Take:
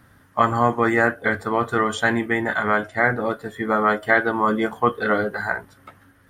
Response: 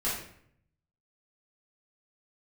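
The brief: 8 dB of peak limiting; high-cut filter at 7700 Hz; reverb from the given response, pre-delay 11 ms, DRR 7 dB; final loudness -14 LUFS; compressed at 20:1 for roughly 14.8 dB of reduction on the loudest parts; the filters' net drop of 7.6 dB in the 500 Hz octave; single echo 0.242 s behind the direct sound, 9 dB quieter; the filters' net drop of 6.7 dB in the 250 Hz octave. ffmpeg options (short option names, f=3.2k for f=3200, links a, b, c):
-filter_complex "[0:a]lowpass=7.7k,equalizer=f=250:t=o:g=-6,equalizer=f=500:t=o:g=-8,acompressor=threshold=-29dB:ratio=20,alimiter=limit=-23.5dB:level=0:latency=1,aecho=1:1:242:0.355,asplit=2[a][b];[1:a]atrim=start_sample=2205,adelay=11[c];[b][c]afir=irnorm=-1:irlink=0,volume=-14.5dB[d];[a][d]amix=inputs=2:normalize=0,volume=20.5dB"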